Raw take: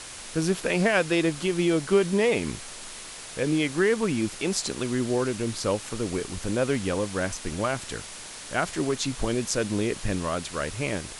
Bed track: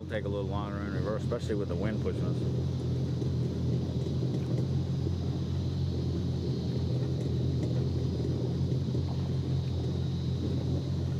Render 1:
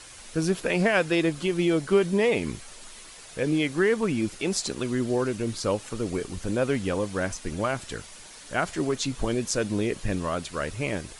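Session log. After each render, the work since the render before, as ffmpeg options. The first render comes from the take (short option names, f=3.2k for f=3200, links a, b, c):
-af "afftdn=nr=8:nf=-41"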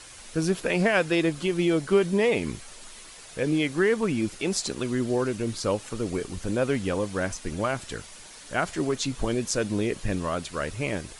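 -af anull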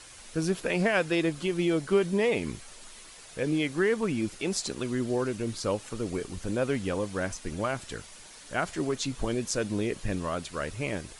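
-af "volume=-3dB"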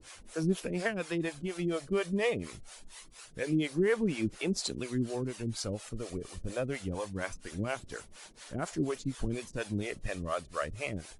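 -filter_complex "[0:a]acrossover=split=410[a][b];[a]aeval=exprs='val(0)*(1-1/2+1/2*cos(2*PI*4.2*n/s))':c=same[c];[b]aeval=exprs='val(0)*(1-1/2-1/2*cos(2*PI*4.2*n/s))':c=same[d];[c][d]amix=inputs=2:normalize=0,aphaser=in_gain=1:out_gain=1:delay=1.7:decay=0.32:speed=0.24:type=sinusoidal"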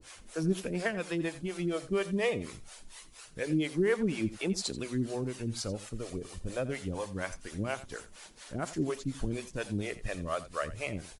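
-af "aecho=1:1:86:0.158"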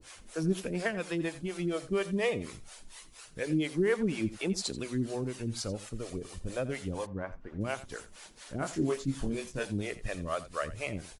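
-filter_complex "[0:a]asplit=3[a][b][c];[a]afade=t=out:st=7.05:d=0.02[d];[b]lowpass=1.2k,afade=t=in:st=7.05:d=0.02,afade=t=out:st=7.6:d=0.02[e];[c]afade=t=in:st=7.6:d=0.02[f];[d][e][f]amix=inputs=3:normalize=0,asettb=1/sr,asplit=3[g][h][i];[g]atrim=end=8.584[j];[h]atrim=start=8.58:end=9.67,asetpts=PTS-STARTPTS,afade=t=in:d=0.004:c=qsin,afade=t=out:st=1.086:d=0.004:c=qsin,asplit=2[k][l];[l]adelay=22,volume=-4.5dB[m];[k][m]amix=inputs=2:normalize=0,atrim=end_sample=48069[n];[i]atrim=start=9.666[o];[j][n]acrossfade=d=0.004:c1=hsin:c2=qsin[p];[p][o]acrossfade=d=0.004:c1=qsin:c2=hsin"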